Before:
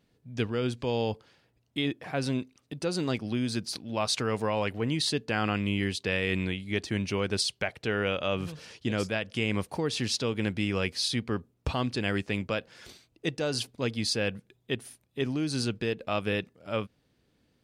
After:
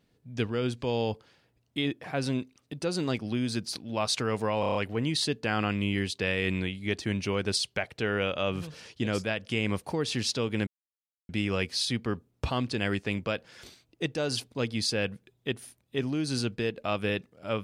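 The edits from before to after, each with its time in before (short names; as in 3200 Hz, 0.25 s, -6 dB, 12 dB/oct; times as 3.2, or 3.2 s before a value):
4.6 stutter 0.03 s, 6 plays
10.52 insert silence 0.62 s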